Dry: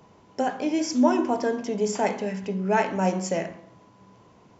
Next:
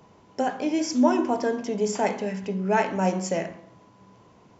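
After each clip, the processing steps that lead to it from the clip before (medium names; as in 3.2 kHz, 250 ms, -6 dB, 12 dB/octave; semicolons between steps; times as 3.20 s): no audible change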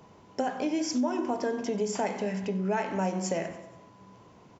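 feedback delay 94 ms, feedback 58%, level -19 dB; compression 4:1, threshold -26 dBFS, peak gain reduction 10.5 dB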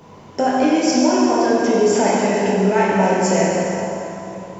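plate-style reverb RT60 3.2 s, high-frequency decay 0.75×, DRR -5.5 dB; trim +8 dB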